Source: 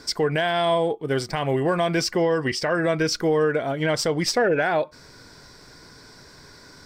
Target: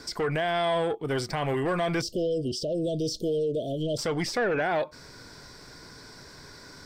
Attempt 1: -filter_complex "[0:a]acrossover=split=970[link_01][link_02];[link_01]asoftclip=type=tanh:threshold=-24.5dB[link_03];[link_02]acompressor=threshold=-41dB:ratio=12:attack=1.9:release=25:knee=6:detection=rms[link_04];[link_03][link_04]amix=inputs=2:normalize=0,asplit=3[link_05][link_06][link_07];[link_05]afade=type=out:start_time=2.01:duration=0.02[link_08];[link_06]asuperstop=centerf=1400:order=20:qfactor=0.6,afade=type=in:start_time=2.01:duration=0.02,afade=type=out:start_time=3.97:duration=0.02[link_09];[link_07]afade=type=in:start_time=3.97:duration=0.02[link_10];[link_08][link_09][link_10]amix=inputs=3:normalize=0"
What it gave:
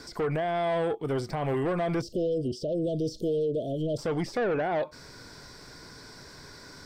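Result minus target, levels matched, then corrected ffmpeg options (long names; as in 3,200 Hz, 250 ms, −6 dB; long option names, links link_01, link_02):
downward compressor: peak gain reduction +10.5 dB
-filter_complex "[0:a]acrossover=split=970[link_01][link_02];[link_01]asoftclip=type=tanh:threshold=-24.5dB[link_03];[link_02]acompressor=threshold=-29.5dB:ratio=12:attack=1.9:release=25:knee=6:detection=rms[link_04];[link_03][link_04]amix=inputs=2:normalize=0,asplit=3[link_05][link_06][link_07];[link_05]afade=type=out:start_time=2.01:duration=0.02[link_08];[link_06]asuperstop=centerf=1400:order=20:qfactor=0.6,afade=type=in:start_time=2.01:duration=0.02,afade=type=out:start_time=3.97:duration=0.02[link_09];[link_07]afade=type=in:start_time=3.97:duration=0.02[link_10];[link_08][link_09][link_10]amix=inputs=3:normalize=0"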